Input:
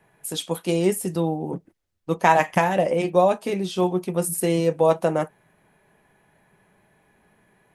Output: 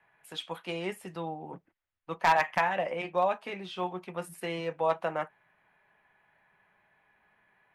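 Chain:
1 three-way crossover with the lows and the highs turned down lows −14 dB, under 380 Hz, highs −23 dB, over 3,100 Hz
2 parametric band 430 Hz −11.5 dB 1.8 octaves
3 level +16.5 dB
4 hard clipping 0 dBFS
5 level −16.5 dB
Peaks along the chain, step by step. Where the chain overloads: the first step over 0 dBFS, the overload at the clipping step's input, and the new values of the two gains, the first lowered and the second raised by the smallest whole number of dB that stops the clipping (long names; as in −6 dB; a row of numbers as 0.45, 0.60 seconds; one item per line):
−5.5, −8.5, +8.0, 0.0, −16.5 dBFS
step 3, 8.0 dB
step 3 +8.5 dB, step 5 −8.5 dB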